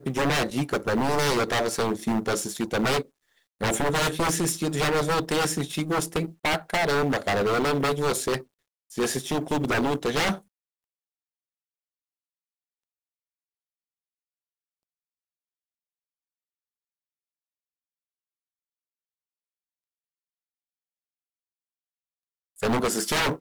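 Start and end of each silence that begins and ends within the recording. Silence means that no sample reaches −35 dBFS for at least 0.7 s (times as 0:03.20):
0:10.38–0:22.60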